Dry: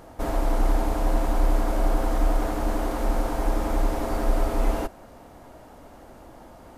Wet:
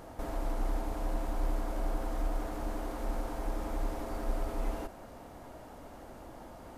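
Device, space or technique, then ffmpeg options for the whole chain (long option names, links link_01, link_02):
de-esser from a sidechain: -filter_complex "[0:a]asplit=2[link_01][link_02];[link_02]highpass=frequency=6900:poles=1,apad=whole_len=298853[link_03];[link_01][link_03]sidechaincompress=threshold=-51dB:ratio=6:attack=0.88:release=34,volume=-2dB"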